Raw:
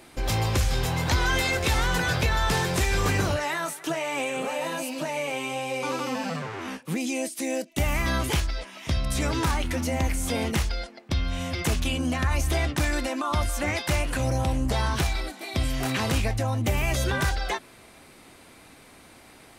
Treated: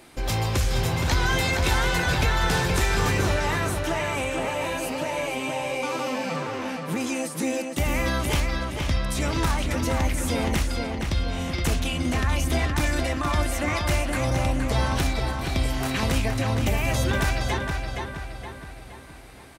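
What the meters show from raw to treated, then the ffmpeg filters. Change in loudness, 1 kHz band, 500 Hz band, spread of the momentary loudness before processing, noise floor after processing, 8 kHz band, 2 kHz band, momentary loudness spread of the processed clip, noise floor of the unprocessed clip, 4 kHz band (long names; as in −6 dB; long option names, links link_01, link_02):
+1.5 dB, +1.5 dB, +2.0 dB, 6 LU, −41 dBFS, +0.5 dB, +1.5 dB, 6 LU, −51 dBFS, +1.0 dB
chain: -filter_complex "[0:a]asplit=2[link_01][link_02];[link_02]adelay=469,lowpass=frequency=4500:poles=1,volume=-4dB,asplit=2[link_03][link_04];[link_04]adelay=469,lowpass=frequency=4500:poles=1,volume=0.5,asplit=2[link_05][link_06];[link_06]adelay=469,lowpass=frequency=4500:poles=1,volume=0.5,asplit=2[link_07][link_08];[link_08]adelay=469,lowpass=frequency=4500:poles=1,volume=0.5,asplit=2[link_09][link_10];[link_10]adelay=469,lowpass=frequency=4500:poles=1,volume=0.5,asplit=2[link_11][link_12];[link_12]adelay=469,lowpass=frequency=4500:poles=1,volume=0.5[link_13];[link_01][link_03][link_05][link_07][link_09][link_11][link_13]amix=inputs=7:normalize=0"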